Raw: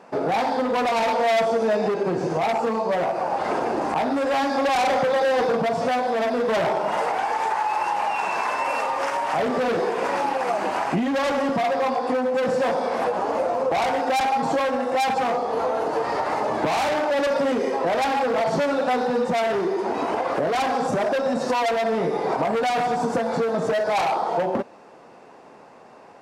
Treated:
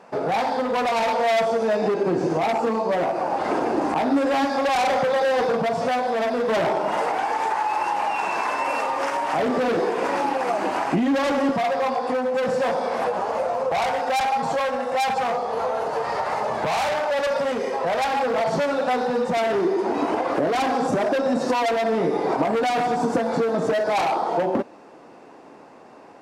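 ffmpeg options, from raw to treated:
ffmpeg -i in.wav -af "asetnsamples=nb_out_samples=441:pad=0,asendcmd='1.82 equalizer g 6.5;4.45 equalizer g -2.5;6.5 equalizer g 5.5;11.51 equalizer g -5;13.22 equalizer g -12;18.13 equalizer g -3;19.37 equalizer g 7',equalizer=frequency=300:width_type=o:width=0.49:gain=-4.5" out.wav

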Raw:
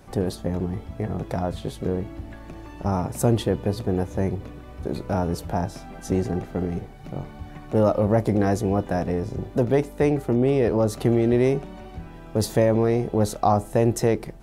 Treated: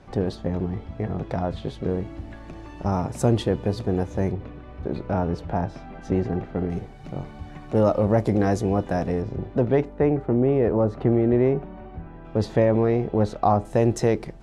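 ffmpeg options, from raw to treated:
ffmpeg -i in.wav -af "asetnsamples=nb_out_samples=441:pad=0,asendcmd='1.89 lowpass f 7400;4.32 lowpass f 3100;6.7 lowpass f 8200;9.22 lowpass f 3100;9.85 lowpass f 1700;12.25 lowpass f 3200;13.65 lowpass f 7000',lowpass=4500" out.wav

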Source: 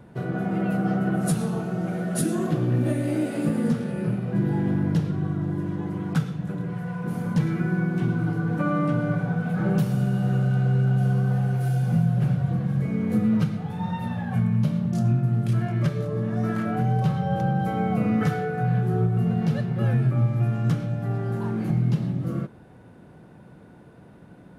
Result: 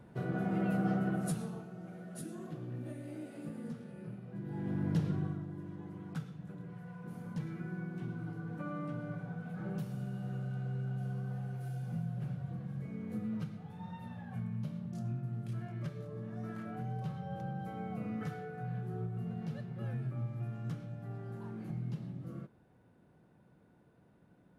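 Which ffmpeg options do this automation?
ffmpeg -i in.wav -af "volume=5dB,afade=type=out:start_time=0.89:duration=0.8:silence=0.251189,afade=type=in:start_time=4.44:duration=0.68:silence=0.237137,afade=type=out:start_time=5.12:duration=0.34:silence=0.334965" out.wav

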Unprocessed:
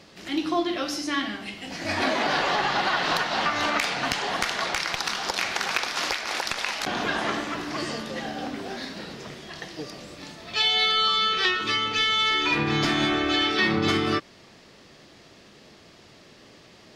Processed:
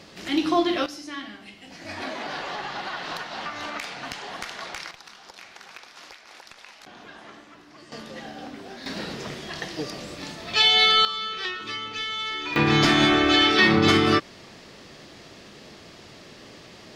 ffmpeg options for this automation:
ffmpeg -i in.wav -af "asetnsamples=nb_out_samples=441:pad=0,asendcmd='0.86 volume volume -8.5dB;4.91 volume volume -18dB;7.92 volume volume -6dB;8.86 volume volume 4.5dB;11.05 volume volume -7.5dB;12.56 volume volume 5dB',volume=3.5dB" out.wav

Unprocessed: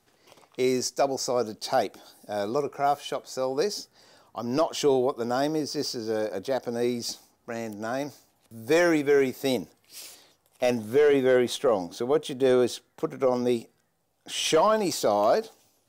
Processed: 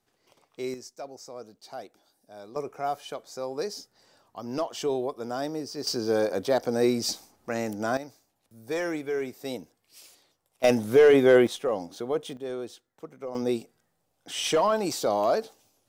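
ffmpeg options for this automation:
ffmpeg -i in.wav -af "asetnsamples=nb_out_samples=441:pad=0,asendcmd='0.74 volume volume -15.5dB;2.56 volume volume -5.5dB;5.87 volume volume 3.5dB;7.97 volume volume -8.5dB;10.64 volume volume 3.5dB;11.47 volume volume -4.5dB;12.37 volume volume -13dB;13.35 volume volume -2dB',volume=-8.5dB" out.wav

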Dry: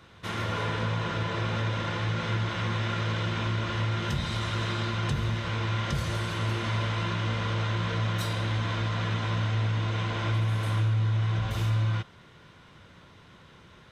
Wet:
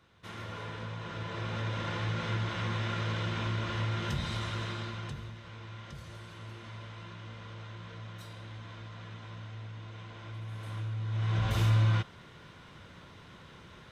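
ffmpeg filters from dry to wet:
ffmpeg -i in.wav -af "volume=13.5dB,afade=type=in:start_time=0.99:duration=0.93:silence=0.446684,afade=type=out:start_time=4.29:duration=1.05:silence=0.237137,afade=type=in:start_time=10.28:duration=0.79:silence=0.446684,afade=type=in:start_time=11.07:duration=0.46:silence=0.298538" out.wav

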